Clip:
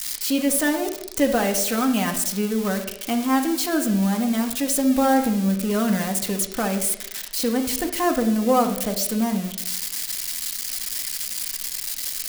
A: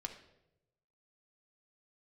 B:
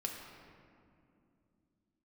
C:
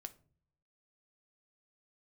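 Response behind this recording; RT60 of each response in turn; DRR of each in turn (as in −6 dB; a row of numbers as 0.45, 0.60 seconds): A; 0.90 s, 2.6 s, non-exponential decay; 3.0, 0.0, 9.0 decibels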